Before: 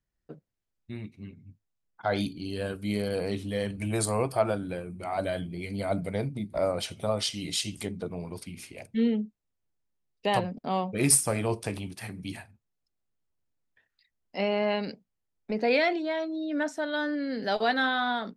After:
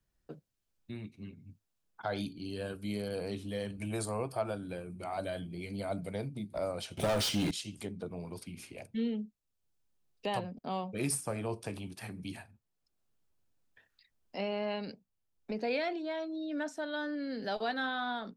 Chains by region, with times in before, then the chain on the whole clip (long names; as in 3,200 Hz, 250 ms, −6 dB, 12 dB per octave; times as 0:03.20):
0:06.97–0:07.51: leveller curve on the samples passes 5 + notch filter 1,100 Hz, Q 22
whole clip: parametric band 2,000 Hz −5 dB 0.22 octaves; multiband upward and downward compressor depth 40%; level −7.5 dB